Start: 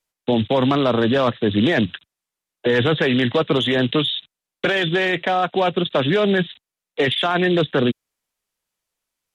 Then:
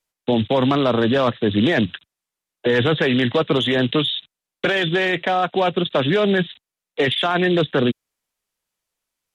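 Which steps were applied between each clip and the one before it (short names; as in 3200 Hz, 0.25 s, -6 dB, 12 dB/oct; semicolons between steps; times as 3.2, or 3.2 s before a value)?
nothing audible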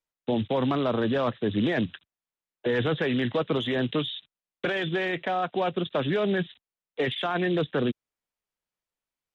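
high shelf 4200 Hz -9 dB; gain -7.5 dB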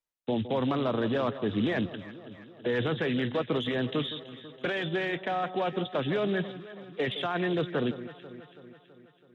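echo with dull and thin repeats by turns 0.164 s, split 1300 Hz, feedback 75%, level -12.5 dB; gain -3 dB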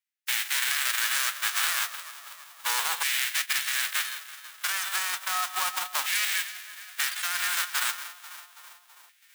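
spectral whitening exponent 0.1; LFO high-pass saw down 0.33 Hz 990–2000 Hz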